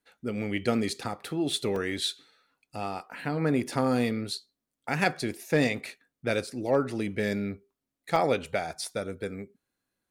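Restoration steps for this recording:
clipped peaks rebuilt −13 dBFS
repair the gap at 0:01.76/0:03.11/0:06.47/0:08.16/0:08.84, 3 ms

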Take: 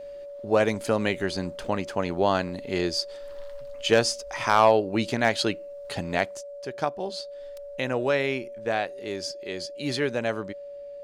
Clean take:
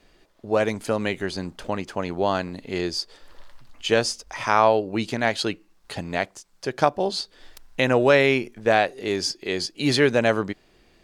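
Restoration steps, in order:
clipped peaks rebuilt −8 dBFS
notch filter 570 Hz, Q 30
level 0 dB, from 0:06.41 +8 dB

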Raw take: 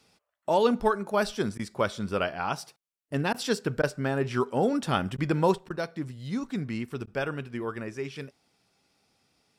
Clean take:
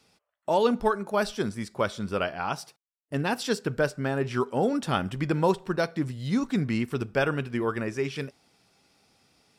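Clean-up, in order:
repair the gap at 0:01.58/0:03.33/0:03.82/0:05.17/0:05.69/0:07.06, 11 ms
level correction +5.5 dB, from 0:05.58

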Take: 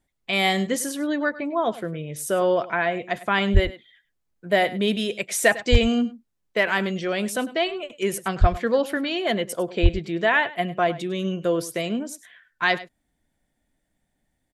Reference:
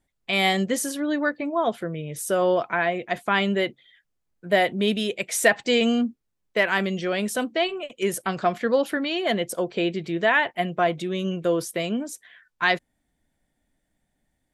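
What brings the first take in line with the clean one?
clipped peaks rebuilt −5.5 dBFS
high-pass at the plosives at 0:03.53/0:05.71/0:08.40/0:09.82
echo removal 101 ms −17 dB

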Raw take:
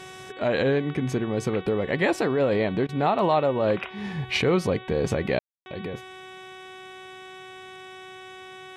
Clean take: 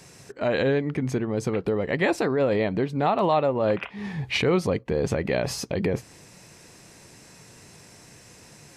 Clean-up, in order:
hum removal 374.3 Hz, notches 10
ambience match 0:05.39–0:05.66
repair the gap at 0:02.87, 17 ms
level correction +9 dB, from 0:05.56

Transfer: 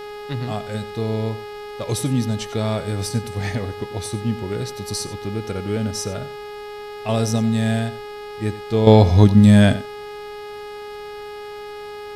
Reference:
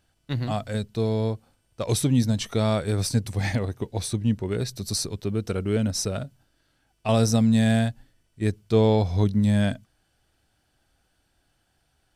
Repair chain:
hum removal 415.8 Hz, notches 13
downward expander −26 dBFS, range −21 dB
echo removal 91 ms −15.5 dB
level 0 dB, from 0:08.87 −10 dB

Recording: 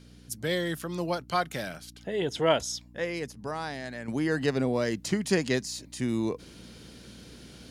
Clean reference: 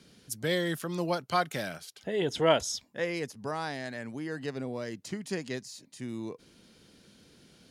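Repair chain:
hum removal 59.8 Hz, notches 5
level correction −9 dB, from 0:04.08

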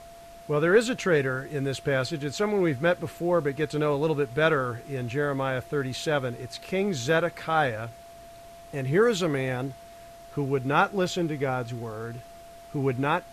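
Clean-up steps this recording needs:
notch filter 680 Hz, Q 30
noise reduction from a noise print 25 dB

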